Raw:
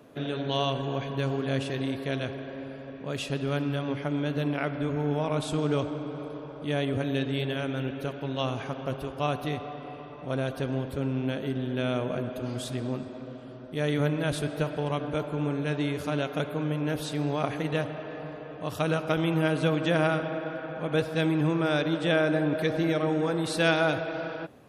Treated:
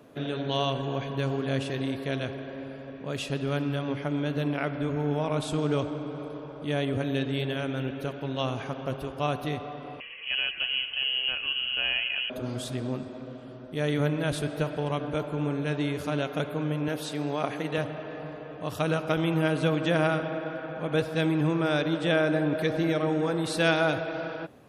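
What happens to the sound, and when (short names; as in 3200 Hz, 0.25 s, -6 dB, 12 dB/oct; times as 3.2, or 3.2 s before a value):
10–12.3 inverted band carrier 3100 Hz
16.88–17.78 Bessel high-pass 190 Hz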